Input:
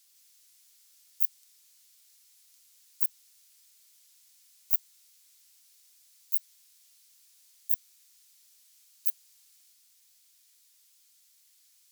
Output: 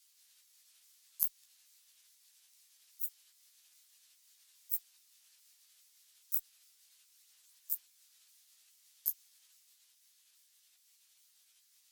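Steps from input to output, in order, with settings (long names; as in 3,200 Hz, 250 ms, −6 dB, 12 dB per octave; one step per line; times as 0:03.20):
pitch shifter swept by a sawtooth −6.5 semitones, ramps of 414 ms
multi-voice chorus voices 6, 1.1 Hz, delay 15 ms, depth 3.1 ms
harmonic generator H 2 −24 dB, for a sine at −10 dBFS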